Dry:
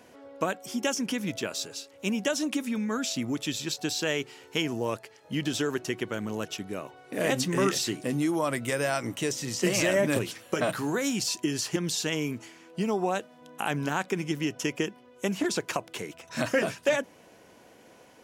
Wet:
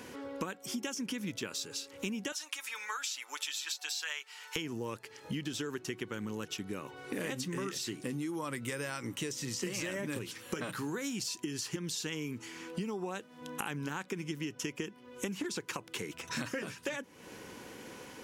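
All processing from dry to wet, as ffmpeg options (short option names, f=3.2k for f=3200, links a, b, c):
-filter_complex "[0:a]asettb=1/sr,asplit=3[a][b][c];[a]atrim=end=2.324[d];[b]atrim=start=2.32:end=4.56,asetpts=PTS-STARTPTS,afade=t=in:d=0.004:c=qsin,afade=t=out:st=2.236:d=0.004:c=qsin,highpass=f=810:w=0.5412,highpass=f=810:w=1.3066,aecho=1:1:6.8:0.5,atrim=end_sample=98784[e];[c]atrim=start=4.556[f];[d][e]acrossfade=d=0.004:c1=hsin:c2=qsin[g];[g][f]acrossfade=d=0.004:c1=qsin:c2=hsin,equalizer=f=660:t=o:w=0.33:g=-14.5,acompressor=threshold=-44dB:ratio=6,volume=8dB"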